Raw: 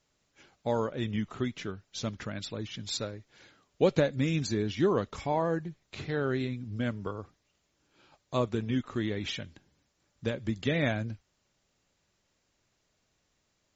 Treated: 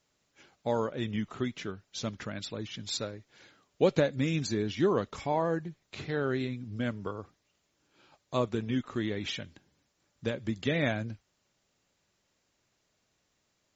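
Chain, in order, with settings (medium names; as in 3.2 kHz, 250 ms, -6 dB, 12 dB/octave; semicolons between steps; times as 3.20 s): bass shelf 67 Hz -8.5 dB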